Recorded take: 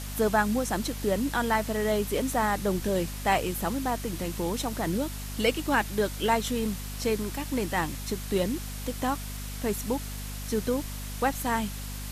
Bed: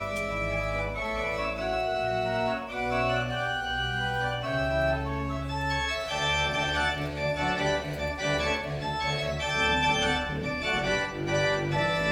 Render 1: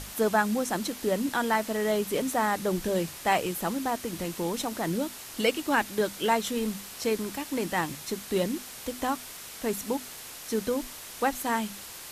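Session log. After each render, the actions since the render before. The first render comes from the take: notches 50/100/150/200/250 Hz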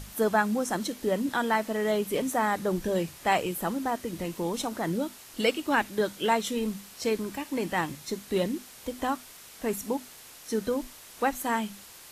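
noise print and reduce 6 dB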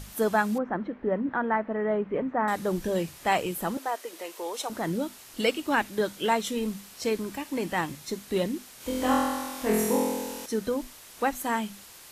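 0.58–2.48 LPF 1900 Hz 24 dB/oct; 3.77–4.7 HPF 420 Hz 24 dB/oct; 8.78–10.46 flutter echo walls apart 4 m, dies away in 1.4 s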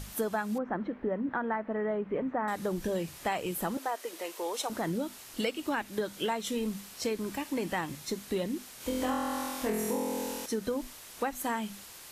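compressor, threshold -28 dBFS, peak gain reduction 9.5 dB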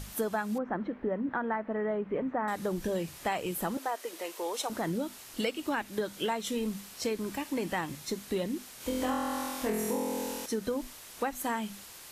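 nothing audible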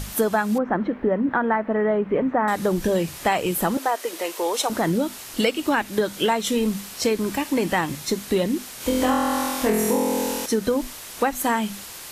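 gain +10.5 dB

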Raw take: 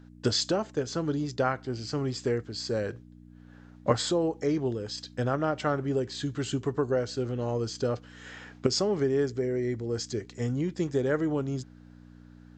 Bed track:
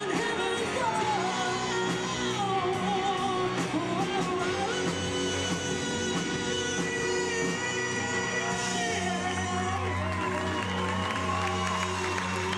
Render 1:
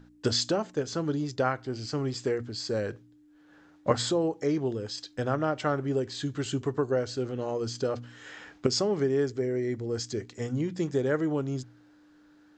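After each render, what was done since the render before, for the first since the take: de-hum 60 Hz, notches 4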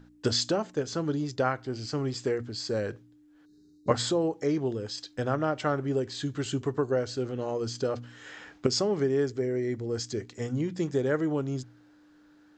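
3.45–3.88 spectral gain 440–3700 Hz -29 dB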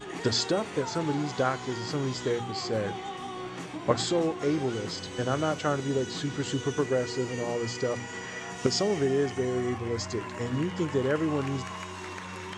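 add bed track -9 dB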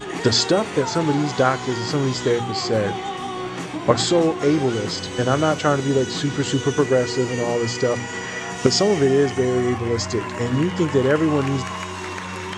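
gain +9 dB; limiter -1 dBFS, peak gain reduction 2 dB

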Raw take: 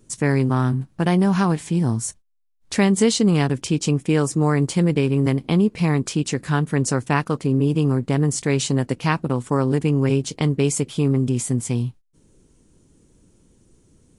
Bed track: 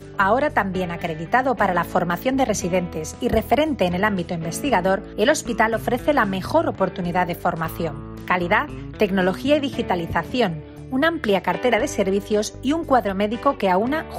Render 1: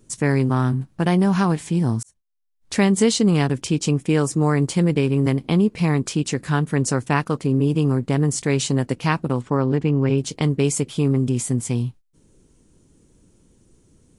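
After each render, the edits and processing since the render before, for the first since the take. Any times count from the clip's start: 2.03–2.78 fade in; 9.41–10.18 air absorption 140 m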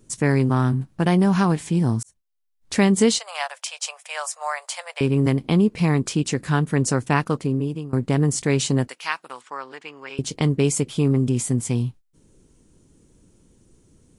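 3.19–5.01 steep high-pass 590 Hz 72 dB/oct; 7.32–7.93 fade out, to -22 dB; 8.88–10.19 HPF 1200 Hz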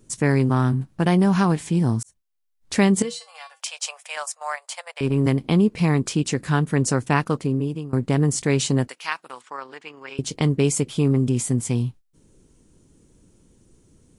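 3.02–3.6 resonator 160 Hz, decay 0.2 s, harmonics odd, mix 90%; 4.15–5.25 transient shaper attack -5 dB, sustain -10 dB; 8.91–10.27 AM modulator 28 Hz, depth 15%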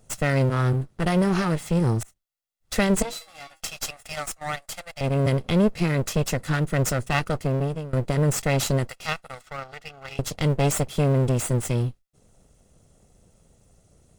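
minimum comb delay 1.5 ms; short-mantissa float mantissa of 6-bit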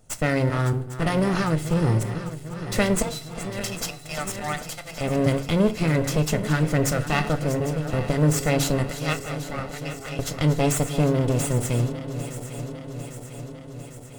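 regenerating reverse delay 0.4 s, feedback 80%, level -12 dB; FDN reverb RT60 0.42 s, low-frequency decay 1.3×, high-frequency decay 0.7×, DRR 9.5 dB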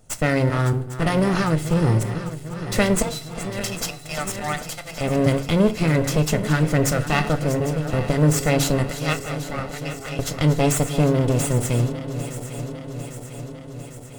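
gain +2.5 dB

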